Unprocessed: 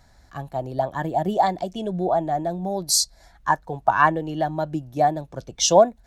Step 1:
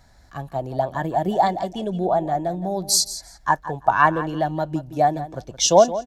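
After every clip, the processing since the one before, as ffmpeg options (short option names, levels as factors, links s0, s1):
-af "aecho=1:1:170|340:0.2|0.0359,volume=1.12"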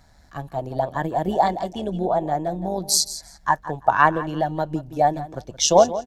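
-af "tremolo=f=150:d=0.519,volume=1.19"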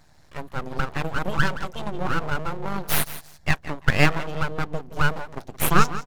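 -af "aeval=exprs='abs(val(0))':c=same"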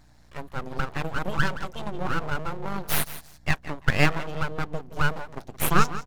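-af "aeval=exprs='val(0)+0.00178*(sin(2*PI*60*n/s)+sin(2*PI*2*60*n/s)/2+sin(2*PI*3*60*n/s)/3+sin(2*PI*4*60*n/s)/4+sin(2*PI*5*60*n/s)/5)':c=same,volume=0.75"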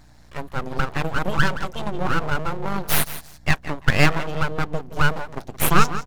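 -af "asoftclip=type=tanh:threshold=0.531,volume=1.88"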